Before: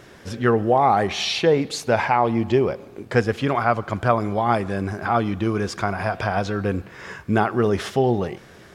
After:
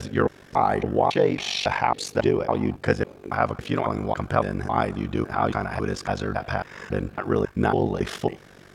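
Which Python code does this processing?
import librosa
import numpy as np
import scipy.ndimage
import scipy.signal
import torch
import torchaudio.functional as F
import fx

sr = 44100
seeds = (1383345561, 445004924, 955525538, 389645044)

y = fx.block_reorder(x, sr, ms=276.0, group=2)
y = y * np.sin(2.0 * np.pi * 24.0 * np.arange(len(y)) / sr)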